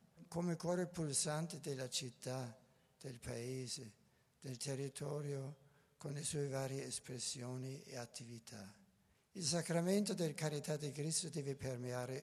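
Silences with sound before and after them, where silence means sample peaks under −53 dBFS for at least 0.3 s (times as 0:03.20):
0:02.53–0:03.01
0:03.90–0:04.42
0:05.54–0:06.00
0:08.71–0:09.36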